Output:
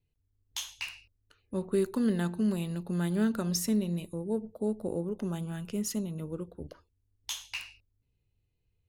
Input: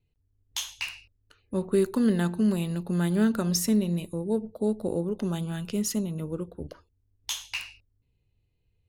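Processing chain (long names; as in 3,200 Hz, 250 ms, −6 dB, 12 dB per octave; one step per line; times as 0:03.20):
0:04.14–0:05.87: parametric band 4,000 Hz −6.5 dB 0.69 octaves
level −4.5 dB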